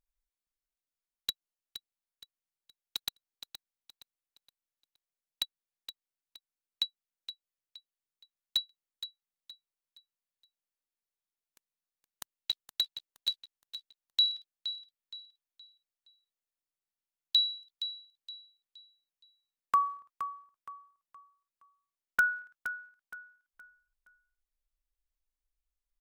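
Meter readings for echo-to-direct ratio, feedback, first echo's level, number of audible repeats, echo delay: -10.5 dB, 34%, -11.0 dB, 3, 469 ms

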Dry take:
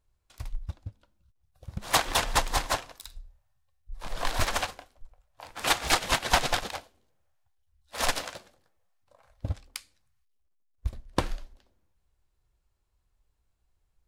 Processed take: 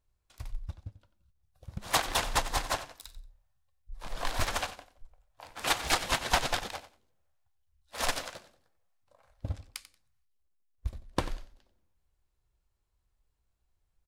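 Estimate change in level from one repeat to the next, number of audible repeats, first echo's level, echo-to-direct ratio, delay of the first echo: -14.5 dB, 2, -14.5 dB, -14.5 dB, 91 ms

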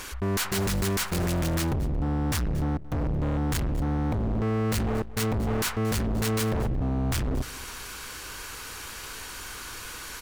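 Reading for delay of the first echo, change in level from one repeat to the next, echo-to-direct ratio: 228 ms, no regular repeats, -18.5 dB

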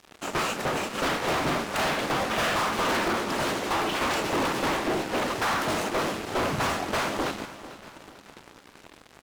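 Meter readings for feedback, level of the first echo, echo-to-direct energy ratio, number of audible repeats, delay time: 45%, -15.0 dB, -14.0 dB, 3, 444 ms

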